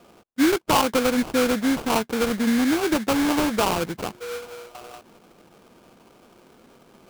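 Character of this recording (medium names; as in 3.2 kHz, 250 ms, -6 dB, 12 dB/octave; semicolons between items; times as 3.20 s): aliases and images of a low sample rate 1.9 kHz, jitter 20%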